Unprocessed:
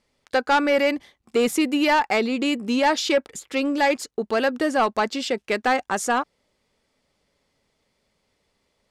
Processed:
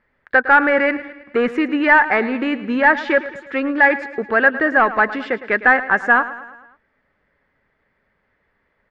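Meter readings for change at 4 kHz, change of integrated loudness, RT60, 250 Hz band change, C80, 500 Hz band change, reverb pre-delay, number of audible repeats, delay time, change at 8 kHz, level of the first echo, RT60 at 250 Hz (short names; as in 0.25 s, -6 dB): -7.0 dB, +6.0 dB, none, +2.5 dB, none, +2.5 dB, none, 4, 0.108 s, under -20 dB, -15.0 dB, none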